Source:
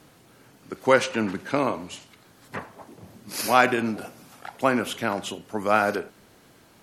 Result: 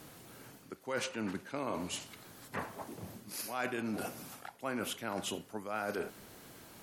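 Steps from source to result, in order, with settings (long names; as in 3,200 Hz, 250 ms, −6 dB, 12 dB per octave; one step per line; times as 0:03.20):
high-shelf EQ 10,000 Hz +9.5 dB
reversed playback
downward compressor 6 to 1, threshold −35 dBFS, peak gain reduction 21.5 dB
reversed playback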